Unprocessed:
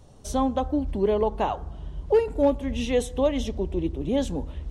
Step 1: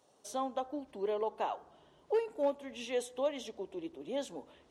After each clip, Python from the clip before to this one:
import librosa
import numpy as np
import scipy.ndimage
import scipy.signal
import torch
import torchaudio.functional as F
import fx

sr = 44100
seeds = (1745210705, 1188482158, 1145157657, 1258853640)

y = scipy.signal.sosfilt(scipy.signal.butter(2, 420.0, 'highpass', fs=sr, output='sos'), x)
y = F.gain(torch.from_numpy(y), -8.5).numpy()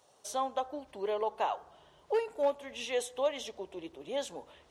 y = fx.peak_eq(x, sr, hz=260.0, db=-9.5, octaves=1.4)
y = F.gain(torch.from_numpy(y), 5.0).numpy()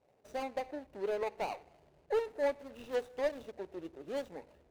y = scipy.signal.medfilt(x, 41)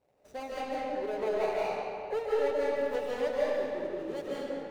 y = fx.rev_freeverb(x, sr, rt60_s=2.4, hf_ratio=0.7, predelay_ms=110, drr_db=-7.0)
y = F.gain(torch.from_numpy(y), -2.0).numpy()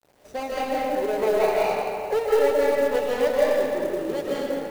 y = fx.quant_companded(x, sr, bits=6)
y = F.gain(torch.from_numpy(y), 9.0).numpy()